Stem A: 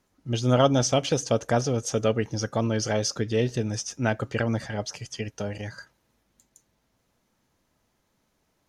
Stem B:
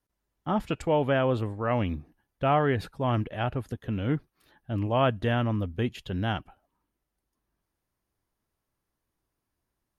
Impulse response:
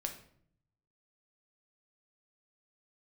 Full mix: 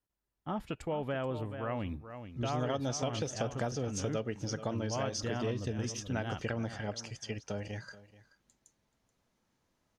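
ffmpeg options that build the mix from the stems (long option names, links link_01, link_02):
-filter_complex "[0:a]lowpass=8800,adelay=2100,volume=-6dB,asplit=2[link_01][link_02];[link_02]volume=-19dB[link_03];[1:a]volume=-7.5dB,asplit=2[link_04][link_05];[link_05]volume=-12dB[link_06];[link_03][link_06]amix=inputs=2:normalize=0,aecho=0:1:430:1[link_07];[link_01][link_04][link_07]amix=inputs=3:normalize=0,acompressor=threshold=-31dB:ratio=4"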